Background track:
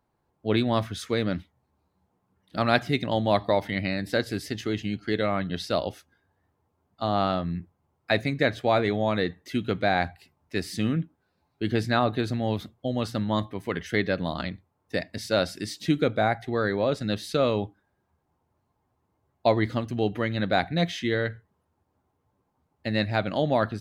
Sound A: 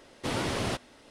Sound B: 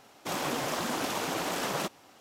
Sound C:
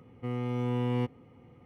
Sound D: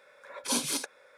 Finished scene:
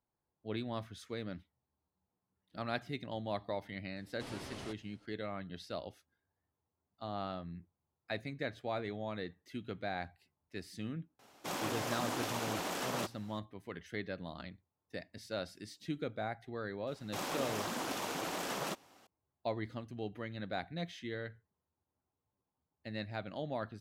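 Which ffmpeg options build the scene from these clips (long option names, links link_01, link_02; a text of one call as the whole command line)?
ffmpeg -i bed.wav -i cue0.wav -i cue1.wav -filter_complex "[2:a]asplit=2[link_01][link_02];[0:a]volume=-15.5dB[link_03];[1:a]atrim=end=1.1,asetpts=PTS-STARTPTS,volume=-16dB,afade=type=in:duration=0.004:curve=hsin,afade=type=out:start_time=1.096:duration=0.004:curve=hsin,adelay=3960[link_04];[link_01]atrim=end=2.2,asetpts=PTS-STARTPTS,volume=-6dB,afade=type=in:duration=0.004:curve=hsin,afade=type=out:start_time=2.196:duration=0.004:curve=hsin,adelay=11190[link_05];[link_02]atrim=end=2.2,asetpts=PTS-STARTPTS,volume=-6.5dB,afade=type=in:duration=0.004:curve=hsin,afade=type=out:start_time=2.196:duration=0.004:curve=hsin,adelay=16870[link_06];[link_03][link_04][link_05][link_06]amix=inputs=4:normalize=0" out.wav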